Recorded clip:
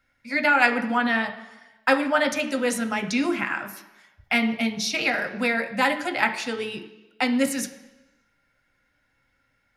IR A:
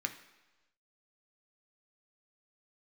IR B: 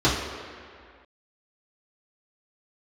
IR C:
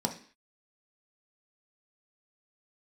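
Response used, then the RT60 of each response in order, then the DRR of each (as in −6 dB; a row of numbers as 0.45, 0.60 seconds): A; 1.1, 2.1, 0.45 seconds; 5.0, −9.0, 2.5 decibels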